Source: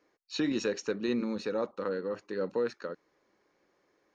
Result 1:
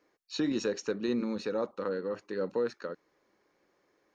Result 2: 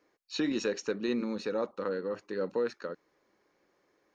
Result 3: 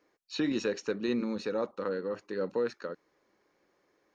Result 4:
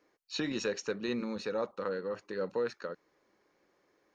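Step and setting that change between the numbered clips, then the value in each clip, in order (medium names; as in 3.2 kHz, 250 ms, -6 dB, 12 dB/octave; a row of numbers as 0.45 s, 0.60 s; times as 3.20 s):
dynamic bell, frequency: 2.4 kHz, 110 Hz, 6.7 kHz, 290 Hz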